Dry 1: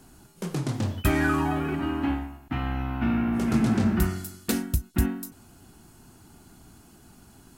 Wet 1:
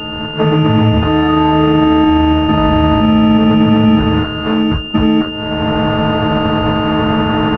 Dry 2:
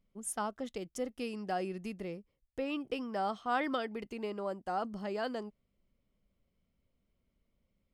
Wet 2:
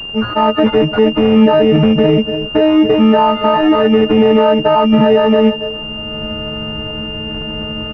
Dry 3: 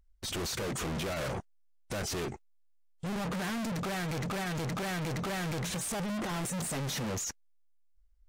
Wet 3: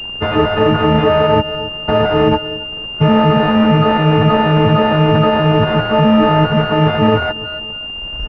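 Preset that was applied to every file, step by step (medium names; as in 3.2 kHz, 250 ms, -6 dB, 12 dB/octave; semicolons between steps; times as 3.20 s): partials quantised in pitch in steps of 6 st; recorder AGC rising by 20 dB/s; on a send: feedback delay 280 ms, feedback 27%, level -24 dB; on the sum: compression 6:1, threshold -27 dBFS; high-pass 360 Hz 6 dB/octave; crackle 570 per s -46 dBFS; tilt EQ -3 dB/octave; loudness maximiser +26.5 dB; class-D stage that switches slowly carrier 2.8 kHz; trim -1 dB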